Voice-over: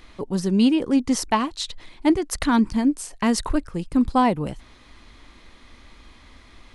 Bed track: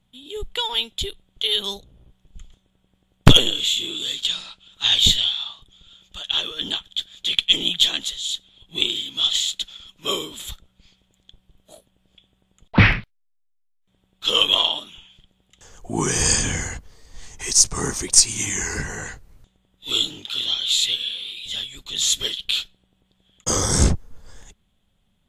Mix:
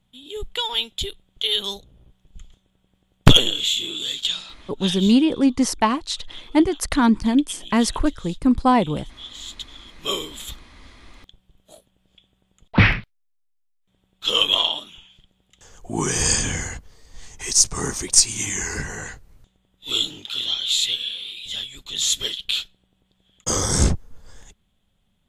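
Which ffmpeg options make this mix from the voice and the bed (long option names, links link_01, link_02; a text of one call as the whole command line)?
ffmpeg -i stem1.wav -i stem2.wav -filter_complex "[0:a]adelay=4500,volume=2dB[link_01];[1:a]volume=17dB,afade=type=out:start_time=4.38:duration=0.71:silence=0.125893,afade=type=in:start_time=9.37:duration=0.57:silence=0.133352[link_02];[link_01][link_02]amix=inputs=2:normalize=0" out.wav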